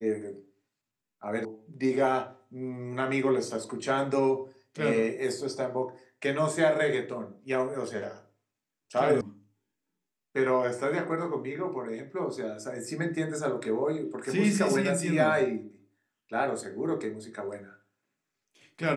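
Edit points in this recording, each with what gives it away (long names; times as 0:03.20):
0:01.45: cut off before it has died away
0:09.21: cut off before it has died away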